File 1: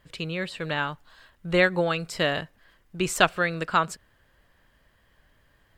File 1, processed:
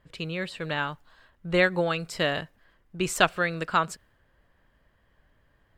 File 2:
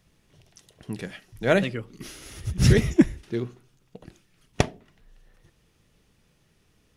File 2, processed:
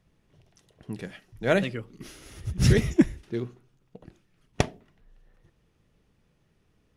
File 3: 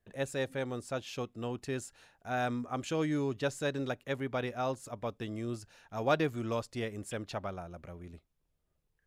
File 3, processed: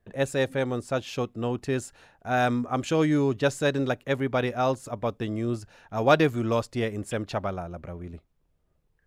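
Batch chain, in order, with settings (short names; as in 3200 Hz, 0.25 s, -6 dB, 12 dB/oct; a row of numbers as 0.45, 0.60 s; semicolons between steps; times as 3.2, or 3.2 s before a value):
mismatched tape noise reduction decoder only; match loudness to -27 LUFS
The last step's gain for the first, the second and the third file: -1.5, -2.0, +9.0 dB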